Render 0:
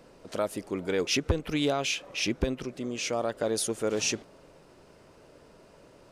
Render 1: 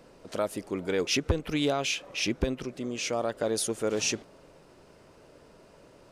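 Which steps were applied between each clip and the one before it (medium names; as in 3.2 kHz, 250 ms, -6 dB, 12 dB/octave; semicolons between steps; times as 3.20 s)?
no audible change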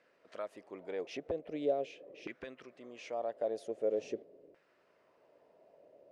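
high-order bell 1.1 kHz -10 dB 1.1 oct; LFO band-pass saw down 0.44 Hz 380–1500 Hz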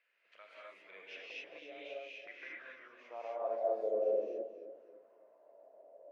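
band-pass sweep 2.5 kHz -> 630 Hz, 1.89–3.80 s; gated-style reverb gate 290 ms rising, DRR -6 dB; modulated delay 274 ms, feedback 38%, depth 78 cents, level -12 dB; trim -1 dB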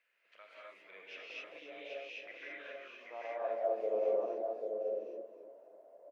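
delay 788 ms -4.5 dB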